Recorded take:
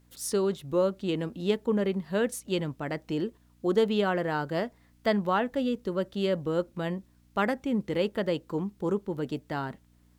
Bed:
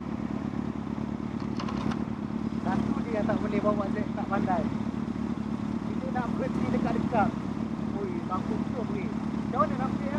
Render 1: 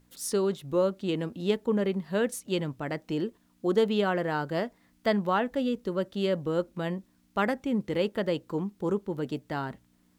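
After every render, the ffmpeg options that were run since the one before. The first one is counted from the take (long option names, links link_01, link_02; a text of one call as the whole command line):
ffmpeg -i in.wav -af "bandreject=frequency=60:width_type=h:width=4,bandreject=frequency=120:width_type=h:width=4" out.wav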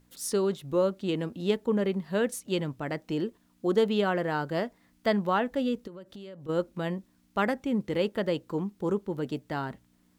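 ffmpeg -i in.wav -filter_complex "[0:a]asplit=3[link_01][link_02][link_03];[link_01]afade=type=out:start_time=5.86:duration=0.02[link_04];[link_02]acompressor=threshold=-41dB:ratio=8:attack=3.2:release=140:knee=1:detection=peak,afade=type=in:start_time=5.86:duration=0.02,afade=type=out:start_time=6.48:duration=0.02[link_05];[link_03]afade=type=in:start_time=6.48:duration=0.02[link_06];[link_04][link_05][link_06]amix=inputs=3:normalize=0" out.wav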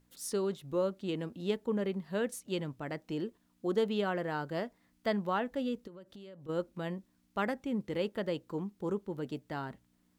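ffmpeg -i in.wav -af "volume=-6dB" out.wav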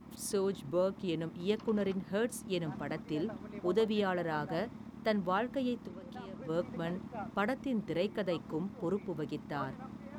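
ffmpeg -i in.wav -i bed.wav -filter_complex "[1:a]volume=-17dB[link_01];[0:a][link_01]amix=inputs=2:normalize=0" out.wav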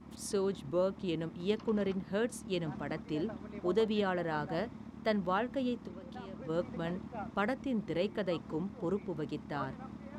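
ffmpeg -i in.wav -af "lowpass=9400,equalizer=frequency=75:width=4.1:gain=5" out.wav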